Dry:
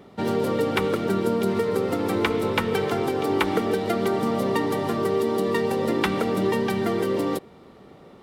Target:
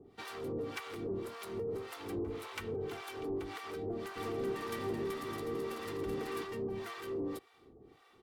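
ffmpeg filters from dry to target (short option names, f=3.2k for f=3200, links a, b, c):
-filter_complex "[0:a]equalizer=f=700:t=o:w=1.3:g=-5.5,aecho=1:1:2.6:0.59,acrossover=split=150[a][b];[b]acompressor=threshold=-23dB:ratio=6[c];[a][c]amix=inputs=2:normalize=0,asoftclip=type=hard:threshold=-25.5dB,acrossover=split=720[d][e];[d]aeval=exprs='val(0)*(1-1/2+1/2*cos(2*PI*1.8*n/s))':c=same[f];[e]aeval=exprs='val(0)*(1-1/2-1/2*cos(2*PI*1.8*n/s))':c=same[g];[f][g]amix=inputs=2:normalize=0,asplit=3[h][i][j];[h]afade=t=out:st=4.15:d=0.02[k];[i]aecho=1:1:380|608|744.8|826.9|876.1:0.631|0.398|0.251|0.158|0.1,afade=t=in:st=4.15:d=0.02,afade=t=out:st=6.43:d=0.02[l];[j]afade=t=in:st=6.43:d=0.02[m];[k][l][m]amix=inputs=3:normalize=0,volume=-6.5dB"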